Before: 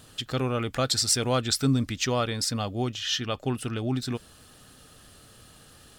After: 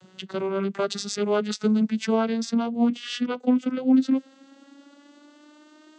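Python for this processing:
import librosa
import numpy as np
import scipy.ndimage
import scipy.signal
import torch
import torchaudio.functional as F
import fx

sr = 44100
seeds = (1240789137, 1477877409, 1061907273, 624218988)

y = fx.vocoder_glide(x, sr, note=54, semitones=9)
y = y * 10.0 ** (4.5 / 20.0)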